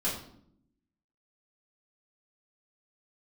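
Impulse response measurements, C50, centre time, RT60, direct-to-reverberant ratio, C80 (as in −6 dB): 5.5 dB, 36 ms, 0.65 s, −9.0 dB, 9.0 dB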